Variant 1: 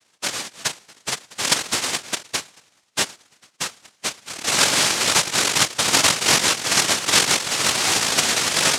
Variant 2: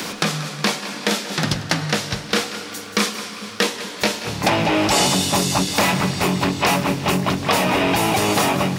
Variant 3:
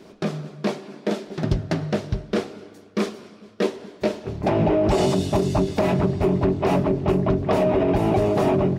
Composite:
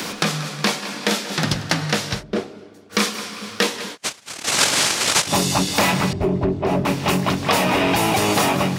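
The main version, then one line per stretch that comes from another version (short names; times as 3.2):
2
2.21–2.92 from 3, crossfade 0.06 s
3.95–5.29 from 1, crossfade 0.06 s
6.13–6.85 from 3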